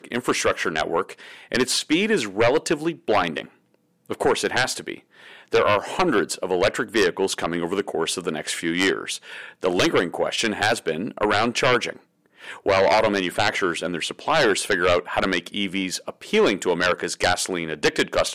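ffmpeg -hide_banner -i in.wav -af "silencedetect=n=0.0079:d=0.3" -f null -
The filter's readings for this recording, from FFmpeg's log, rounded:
silence_start: 3.49
silence_end: 4.06 | silence_duration: 0.57
silence_start: 11.97
silence_end: 12.40 | silence_duration: 0.43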